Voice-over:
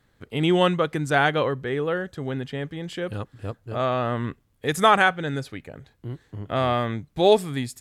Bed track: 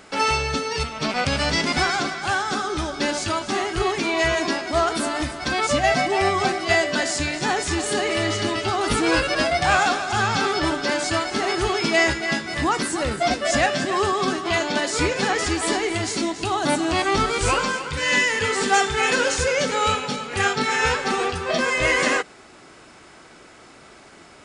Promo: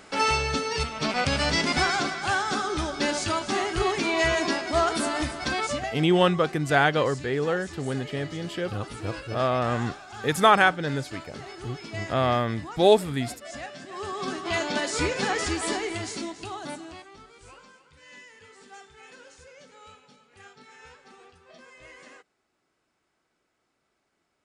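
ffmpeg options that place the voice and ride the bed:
ffmpeg -i stem1.wav -i stem2.wav -filter_complex "[0:a]adelay=5600,volume=-0.5dB[link_01];[1:a]volume=11.5dB,afade=type=out:start_time=5.42:duration=0.53:silence=0.158489,afade=type=in:start_time=13.88:duration=0.75:silence=0.199526,afade=type=out:start_time=15.48:duration=1.61:silence=0.0595662[link_02];[link_01][link_02]amix=inputs=2:normalize=0" out.wav

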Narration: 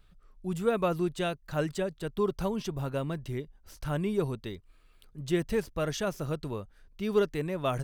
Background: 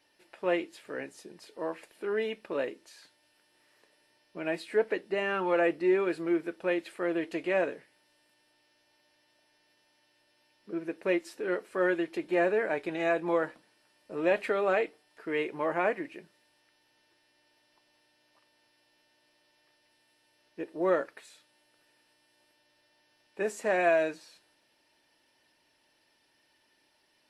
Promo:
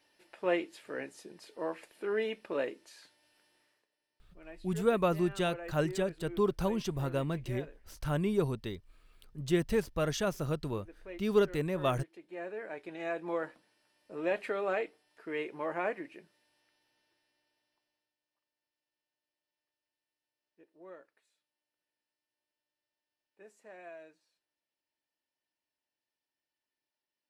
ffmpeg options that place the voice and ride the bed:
ffmpeg -i stem1.wav -i stem2.wav -filter_complex "[0:a]adelay=4200,volume=-0.5dB[link_01];[1:a]volume=11dB,afade=type=out:start_time=3.46:duration=0.4:silence=0.149624,afade=type=in:start_time=12.27:duration=1.31:silence=0.237137,afade=type=out:start_time=16.63:duration=1.53:silence=0.11885[link_02];[link_01][link_02]amix=inputs=2:normalize=0" out.wav

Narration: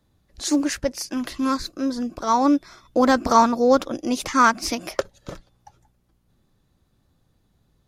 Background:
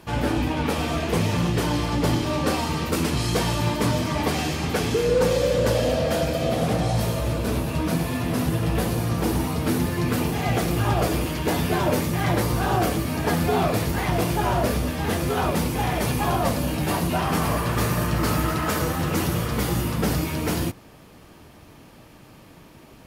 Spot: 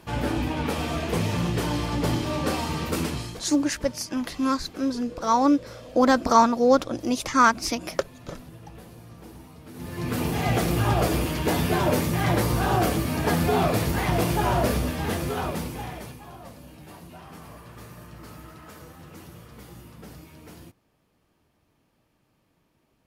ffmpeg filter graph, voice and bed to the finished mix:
ffmpeg -i stem1.wav -i stem2.wav -filter_complex "[0:a]adelay=3000,volume=-1.5dB[link_01];[1:a]volume=18dB,afade=type=out:start_time=3:duration=0.4:silence=0.11885,afade=type=in:start_time=9.73:duration=0.66:silence=0.0891251,afade=type=out:start_time=14.7:duration=1.5:silence=0.0944061[link_02];[link_01][link_02]amix=inputs=2:normalize=0" out.wav

